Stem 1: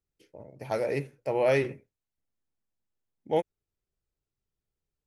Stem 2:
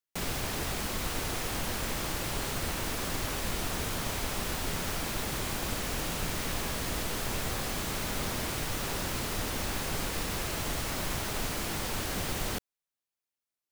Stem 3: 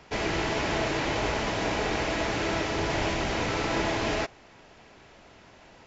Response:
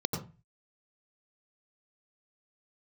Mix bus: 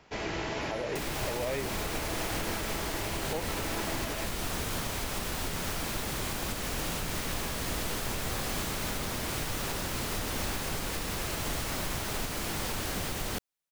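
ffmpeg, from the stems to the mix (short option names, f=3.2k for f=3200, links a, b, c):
-filter_complex "[0:a]volume=-3dB[a];[1:a]adelay=800,volume=2dB[b];[2:a]volume=-6dB[c];[a][b][c]amix=inputs=3:normalize=0,alimiter=limit=-22.5dB:level=0:latency=1:release=232"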